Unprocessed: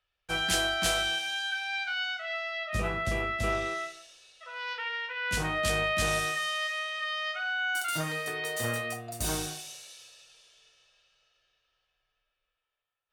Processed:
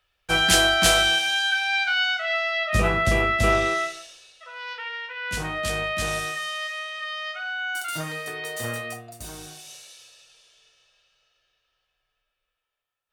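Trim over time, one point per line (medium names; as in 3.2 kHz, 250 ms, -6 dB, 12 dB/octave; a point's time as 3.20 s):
4.00 s +9.5 dB
4.56 s +1 dB
8.97 s +1 dB
9.32 s -9 dB
9.74 s +2 dB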